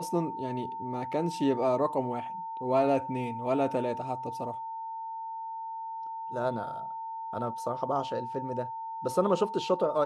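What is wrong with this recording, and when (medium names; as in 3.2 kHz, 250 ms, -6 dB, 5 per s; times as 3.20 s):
whine 900 Hz -35 dBFS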